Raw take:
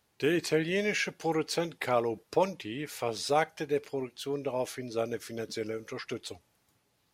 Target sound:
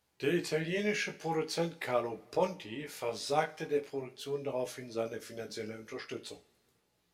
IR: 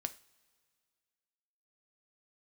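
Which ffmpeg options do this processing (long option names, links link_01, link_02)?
-filter_complex "[0:a]flanger=delay=16:depth=3.4:speed=0.45[link_01];[1:a]atrim=start_sample=2205[link_02];[link_01][link_02]afir=irnorm=-1:irlink=0"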